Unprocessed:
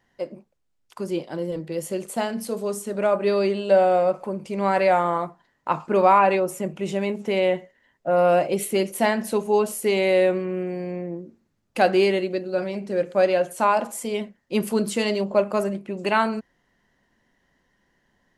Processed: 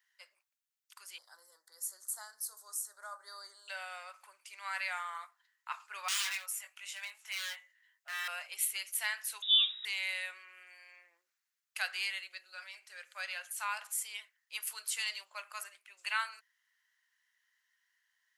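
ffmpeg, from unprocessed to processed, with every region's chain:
-filter_complex "[0:a]asettb=1/sr,asplit=3[s0][s1][s2];[s0]atrim=end=1.184[s3];[s1]atrim=start=1.18:end=3.68,asetpts=PTS-STARTPTS,afade=t=in:d=0.004:c=qsin,afade=t=out:st=2.496:d=0.004:c=qsin,acompressor=mode=upward:threshold=0.0355:ratio=2.5:attack=3.2:release=140:knee=2.83:detection=peak,asuperstop=centerf=2600:order=4:qfactor=0.72[s4];[s2]atrim=start=3.676[s5];[s3][s4]acrossfade=d=0.004:c1=hsin:c2=qsin[s6];[s6][s5]acrossfade=d=0.004:c1=qsin:c2=hsin,asettb=1/sr,asplit=3[s7][s8][s9];[s7]atrim=end=6.084[s10];[s8]atrim=start=6.08:end=8.28,asetpts=PTS-STARTPTS,afade=t=in:d=0.004:c=qsin,afade=t=out:st=2.196:d=0.004:c=qsin,highpass=f=570:w=0.5412,highpass=f=570:w=1.3066,aeval=exprs='0.075*(abs(mod(val(0)/0.075+3,4)-2)-1)':c=same,asplit=2[s11][s12];[s12]adelay=20,volume=0.562[s13];[s11][s13]amix=inputs=2:normalize=0,atrim=end_sample=97020[s14];[s9]atrim=start=8.276[s15];[s10][s14]acrossfade=d=0.004:c1=hsin:c2=qsin[s16];[s16][s15]acrossfade=d=0.004:c1=qsin:c2=hsin,asettb=1/sr,asplit=3[s17][s18][s19];[s17]atrim=end=9.424[s20];[s18]atrim=start=9.42:end=9.85,asetpts=PTS-STARTPTS,afade=t=in:d=0.004:c=qsin,afade=t=out:st=0.426:d=0.004:c=qsin,aeval=exprs='val(0)+0.0112*(sin(2*PI*60*n/s)+sin(2*PI*2*60*n/s)/2+sin(2*PI*3*60*n/s)/3+sin(2*PI*4*60*n/s)/4+sin(2*PI*5*60*n/s)/5)':c=same,asplit=2[s21][s22];[s22]adelay=42,volume=0.224[s23];[s21][s23]amix=inputs=2:normalize=0,atrim=end_sample=18963,lowpass=f=3300:t=q:w=0.5098,lowpass=f=3300:t=q:w=0.6013,lowpass=f=3300:t=q:w=0.9,lowpass=f=3300:t=q:w=2.563,afreqshift=-3900[s24];[s19]atrim=start=9.846[s25];[s20][s24]acrossfade=d=0.004:c1=hsin:c2=qsin[s26];[s26][s25]acrossfade=d=0.004:c1=qsin:c2=hsin,highpass=f=1400:w=0.5412,highpass=f=1400:w=1.3066,highshelf=f=10000:g=11.5,volume=0.447"

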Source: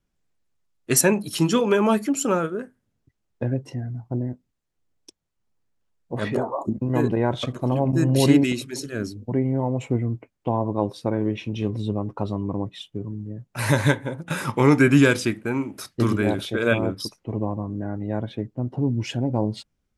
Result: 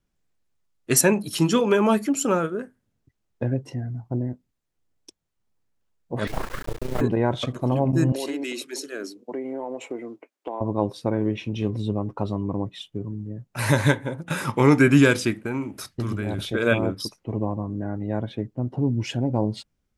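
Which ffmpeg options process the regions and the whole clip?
-filter_complex "[0:a]asettb=1/sr,asplit=3[s0][s1][s2];[s0]atrim=end=6.274[s3];[s1]atrim=start=6.27:end=7.01,asetpts=PTS-STARTPTS,afade=t=in:d=0.004:c=qsin,afade=t=out:st=0.736:d=0.004:c=qsin,aeval=exprs='abs(val(0))':c=same,tremolo=f=29:d=0.788,acrusher=bits=4:dc=4:mix=0:aa=0.000001[s4];[s2]atrim=start=7.006[s5];[s3][s4]acrossfade=d=0.004:c1=hsin:c2=qsin[s6];[s6][s5]acrossfade=d=0.004:c1=qsin:c2=hsin,asettb=1/sr,asplit=3[s7][s8][s9];[s7]atrim=end=8.124[s10];[s8]atrim=start=8.12:end=10.61,asetpts=PTS-STARTPTS,afade=t=in:d=0.004:c=qsin,afade=t=out:st=2.486:d=0.004:c=qsin,highpass=f=310:w=0.5412,highpass=f=310:w=1.3066,acompressor=threshold=0.0501:ratio=5:attack=3.2:release=140:knee=1:detection=peak[s11];[s9]atrim=start=10.606[s12];[s10][s11]acrossfade=d=0.004:c1=hsin:c2=qsin[s13];[s13][s12]acrossfade=d=0.004:c1=qsin:c2=hsin,asettb=1/sr,asplit=3[s14][s15][s16];[s14]atrim=end=15.424[s17];[s15]atrim=start=15.42:end=16.52,asetpts=PTS-STARTPTS,afade=t=in:d=0.004:c=qsin,afade=t=out:st=1.096:d=0.004:c=qsin,asubboost=boost=6:cutoff=190,acompressor=threshold=0.0794:ratio=12:attack=3.2:release=140:knee=1:detection=peak[s18];[s16]atrim=start=16.516[s19];[s17][s18]acrossfade=d=0.004:c1=hsin:c2=qsin[s20];[s20][s19]acrossfade=d=0.004:c1=qsin:c2=hsin"

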